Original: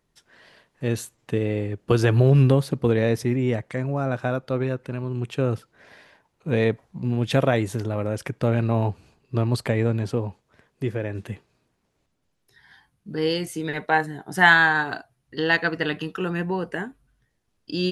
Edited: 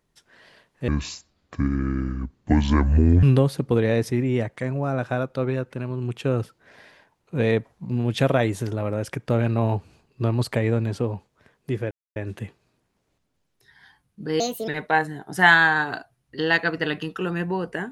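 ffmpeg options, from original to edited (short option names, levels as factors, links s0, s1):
-filter_complex "[0:a]asplit=6[s0][s1][s2][s3][s4][s5];[s0]atrim=end=0.884[s6];[s1]atrim=start=0.88:end=2.36,asetpts=PTS-STARTPTS,asetrate=27783,aresample=44100[s7];[s2]atrim=start=2.356:end=11.04,asetpts=PTS-STARTPTS,afade=t=out:st=8.68:d=0.004:c=hsin,apad=pad_dur=0.25[s8];[s3]atrim=start=11.04:end=13.284,asetpts=PTS-STARTPTS,afade=t=in:d=0.004:c=hsin[s9];[s4]atrim=start=13.28:end=13.67,asetpts=PTS-STARTPTS,asetrate=61740,aresample=44100[s10];[s5]atrim=start=13.666[s11];[s6][s7]acrossfade=d=0.004:c1=hsin:c2=hsin[s12];[s8][s9]concat=n=2:v=0:a=1[s13];[s12][s13]acrossfade=d=0.004:c1=hsin:c2=hsin[s14];[s14][s10]acrossfade=d=0.004:c1=hsin:c2=hsin[s15];[s15][s11]acrossfade=d=0.004:c1=hsin:c2=hsin"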